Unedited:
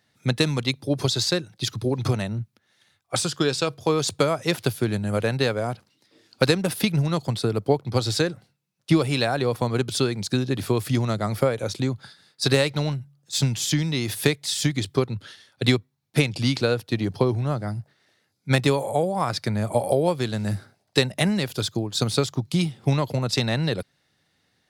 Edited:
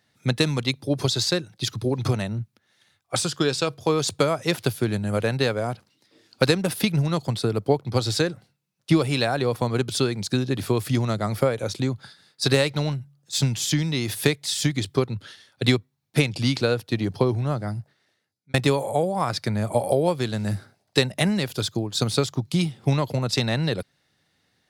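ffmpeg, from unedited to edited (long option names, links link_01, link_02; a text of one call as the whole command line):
ffmpeg -i in.wav -filter_complex "[0:a]asplit=2[link_01][link_02];[link_01]atrim=end=18.54,asetpts=PTS-STARTPTS,afade=type=out:start_time=17.76:duration=0.78[link_03];[link_02]atrim=start=18.54,asetpts=PTS-STARTPTS,afade=type=in:duration=0.004:curve=hsin[link_04];[link_03][link_04]concat=n=2:v=0:a=1" out.wav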